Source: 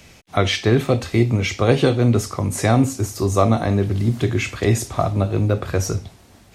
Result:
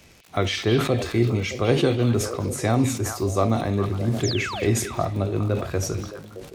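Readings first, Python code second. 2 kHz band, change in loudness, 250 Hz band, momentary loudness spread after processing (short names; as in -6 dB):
-3.5 dB, -4.0 dB, -4.0 dB, 6 LU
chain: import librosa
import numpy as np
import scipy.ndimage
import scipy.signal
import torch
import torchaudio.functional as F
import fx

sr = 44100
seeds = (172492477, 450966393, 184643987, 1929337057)

p1 = fx.peak_eq(x, sr, hz=360.0, db=3.0, octaves=0.7)
p2 = fx.dmg_crackle(p1, sr, seeds[0], per_s=85.0, level_db=-30.0)
p3 = fx.spec_paint(p2, sr, seeds[1], shape='fall', start_s=4.23, length_s=0.51, low_hz=220.0, high_hz=7700.0, level_db=-26.0)
p4 = p3 + fx.echo_stepped(p3, sr, ms=206, hz=3200.0, octaves=-1.4, feedback_pct=70, wet_db=-5.0, dry=0)
p5 = fx.sustainer(p4, sr, db_per_s=83.0)
y = F.gain(torch.from_numpy(p5), -6.0).numpy()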